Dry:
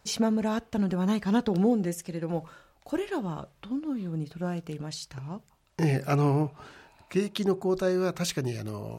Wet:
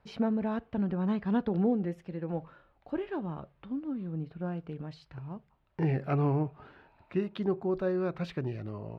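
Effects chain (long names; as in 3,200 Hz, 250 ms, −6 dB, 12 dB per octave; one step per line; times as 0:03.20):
high-frequency loss of the air 400 metres
level −3 dB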